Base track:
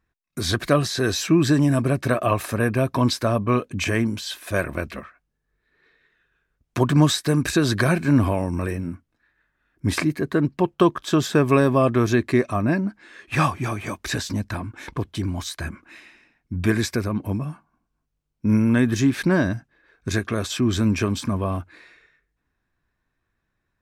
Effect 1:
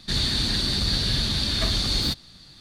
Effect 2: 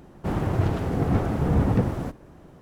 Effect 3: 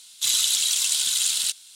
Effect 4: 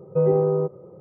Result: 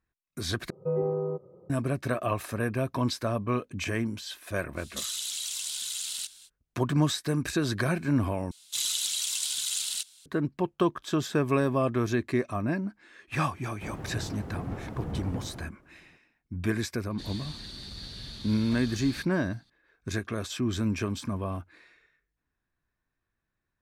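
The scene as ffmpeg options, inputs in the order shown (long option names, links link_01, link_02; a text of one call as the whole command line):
ffmpeg -i bed.wav -i cue0.wav -i cue1.wav -i cue2.wav -i cue3.wav -filter_complex "[3:a]asplit=2[link_01][link_02];[0:a]volume=-8dB[link_03];[link_01]acompressor=threshold=-31dB:ratio=3:attack=7.1:release=52:knee=1:detection=peak[link_04];[link_03]asplit=3[link_05][link_06][link_07];[link_05]atrim=end=0.704[link_08];[4:a]atrim=end=1,asetpts=PTS-STARTPTS,volume=-9dB[link_09];[link_06]atrim=start=1.696:end=8.514[link_10];[link_02]atrim=end=1.75,asetpts=PTS-STARTPTS,volume=-8dB[link_11];[link_07]atrim=start=10.256[link_12];[link_04]atrim=end=1.75,asetpts=PTS-STARTPTS,volume=-4.5dB,afade=type=in:duration=0.05,afade=type=out:start_time=1.7:duration=0.05,adelay=4750[link_13];[2:a]atrim=end=2.61,asetpts=PTS-STARTPTS,volume=-13.5dB,afade=type=in:duration=0.004:curve=hsin,afade=type=out:start_time=2.606:duration=0.004:curve=hsin,adelay=13570[link_14];[1:a]atrim=end=2.6,asetpts=PTS-STARTPTS,volume=-18dB,afade=type=in:duration=0.004:curve=hsin,afade=type=out:start_time=2.596:duration=0.004:curve=hsin,adelay=17100[link_15];[link_08][link_09]acrossfade=duration=0.004:curve1=hsin:curve2=hsin[link_16];[link_16][link_10]acrossfade=duration=0.004:curve1=hsin:curve2=hsin[link_17];[link_17][link_11]acrossfade=duration=0.004:curve1=hsin:curve2=hsin[link_18];[link_18][link_12]acrossfade=duration=0.004:curve1=hsin:curve2=hsin[link_19];[link_19][link_13][link_14][link_15]amix=inputs=4:normalize=0" out.wav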